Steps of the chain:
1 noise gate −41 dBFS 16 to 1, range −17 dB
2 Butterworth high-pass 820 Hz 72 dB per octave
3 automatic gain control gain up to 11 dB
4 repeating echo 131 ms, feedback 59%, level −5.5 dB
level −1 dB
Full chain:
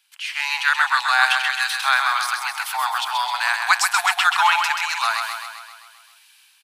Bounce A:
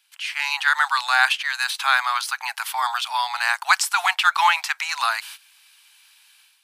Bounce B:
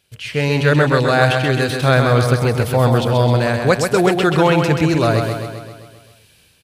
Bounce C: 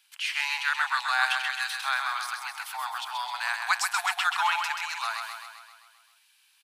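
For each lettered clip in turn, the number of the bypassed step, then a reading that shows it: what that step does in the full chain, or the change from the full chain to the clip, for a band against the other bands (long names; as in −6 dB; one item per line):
4, echo-to-direct ratio −3.5 dB to none audible
2, 500 Hz band +30.0 dB
3, change in momentary loudness spread +1 LU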